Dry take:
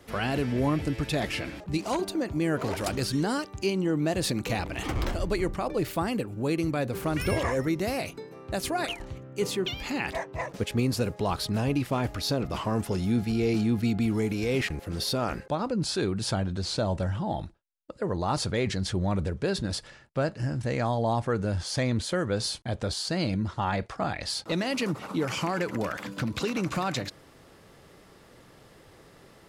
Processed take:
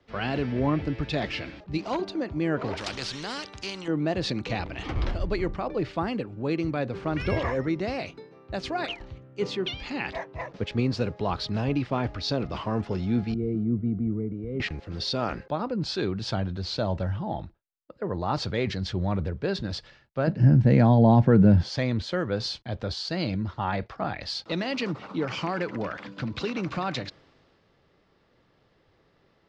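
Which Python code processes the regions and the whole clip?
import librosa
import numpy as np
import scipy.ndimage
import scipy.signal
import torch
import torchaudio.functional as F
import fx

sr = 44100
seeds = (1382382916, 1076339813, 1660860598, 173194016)

y = fx.chain(x, sr, fx.peak_eq(hz=9400.0, db=9.0, octaves=0.63),
    fx.spectral_comp(ratio=2.0), at=(2.77, 3.88))
y = fx.chain(y, sr, fx.moving_average(points=52),
    fx.band_widen(depth_pct=40), at=(13.34, 14.6))
y = fx.chain(y, sr, fx.peak_eq(hz=180.0, db=14.0, octaves=1.6),
    fx.notch(hz=1200.0, q=5.8), at=(20.27, 21.69))
y = scipy.signal.sosfilt(scipy.signal.butter(4, 5000.0, 'lowpass', fs=sr, output='sos'), y)
y = fx.band_widen(y, sr, depth_pct=40)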